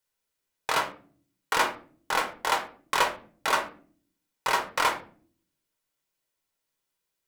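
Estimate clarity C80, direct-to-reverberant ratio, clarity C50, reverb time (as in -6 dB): 17.0 dB, 3.5 dB, 11.5 dB, not exponential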